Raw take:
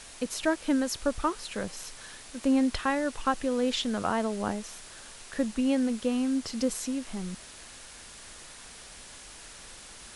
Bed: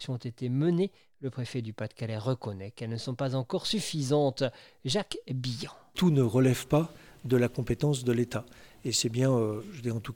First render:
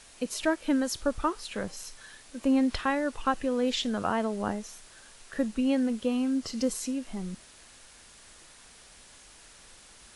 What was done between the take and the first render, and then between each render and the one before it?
noise reduction from a noise print 6 dB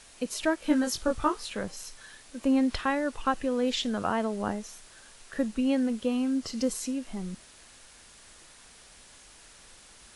0:00.60–0:01.52: double-tracking delay 20 ms −3 dB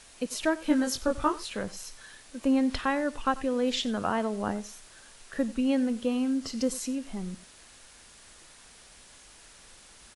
single-tap delay 92 ms −19 dB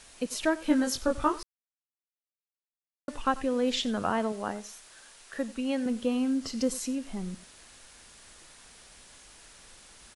0:01.43–0:03.08: silence
0:04.32–0:05.86: low-shelf EQ 260 Hz −10.5 dB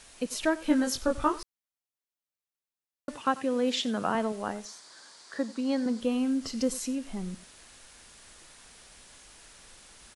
0:03.15–0:04.15: high-pass filter 120 Hz 24 dB per octave
0:04.65–0:06.01: loudspeaker in its box 140–9,000 Hz, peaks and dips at 300 Hz +4 dB, 1,000 Hz +5 dB, 2,700 Hz −9 dB, 4,600 Hz +9 dB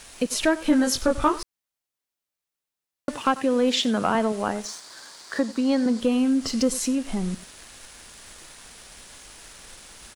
leveller curve on the samples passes 1
in parallel at +2.5 dB: downward compressor, threshold −33 dBFS, peak gain reduction 15 dB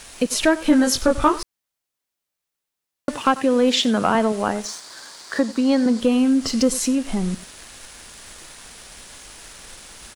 level +4 dB

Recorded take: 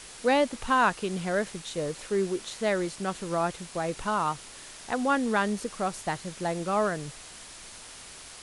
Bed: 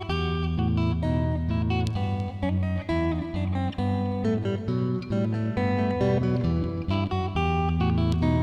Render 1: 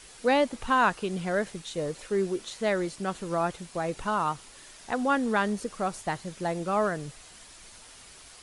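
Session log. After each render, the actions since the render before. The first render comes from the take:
broadband denoise 6 dB, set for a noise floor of −46 dBFS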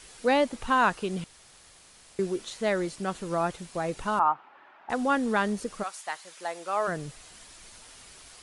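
0:01.24–0:02.19: fill with room tone
0:04.19–0:04.90: loudspeaker in its box 350–2,200 Hz, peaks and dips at 470 Hz −7 dB, 840 Hz +10 dB, 1,300 Hz +5 dB, 2,000 Hz −5 dB
0:05.82–0:06.87: high-pass filter 1,100 Hz → 530 Hz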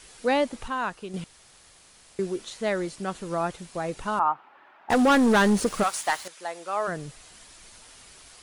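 0:00.68–0:01.14: clip gain −6.5 dB
0:04.90–0:06.28: leveller curve on the samples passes 3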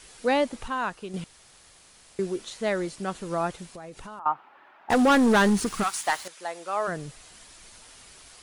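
0:03.68–0:04.26: downward compressor 5 to 1, threshold −39 dBFS
0:05.49–0:06.04: parametric band 550 Hz −13 dB 0.54 octaves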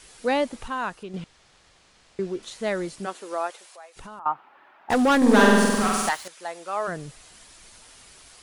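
0:01.03–0:02.43: high-frequency loss of the air 89 metres
0:03.05–0:03.95: high-pass filter 260 Hz → 730 Hz 24 dB per octave
0:05.17–0:06.09: flutter between parallel walls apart 8.1 metres, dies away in 1.5 s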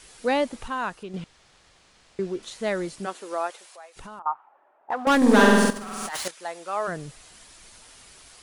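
0:04.22–0:05.07: envelope filter 500–1,000 Hz, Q 2, up, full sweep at −25 dBFS
0:05.70–0:06.31: compressor whose output falls as the input rises −33 dBFS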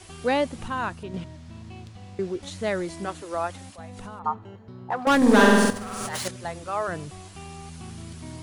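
mix in bed −16.5 dB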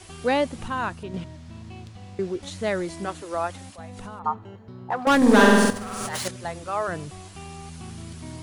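level +1 dB

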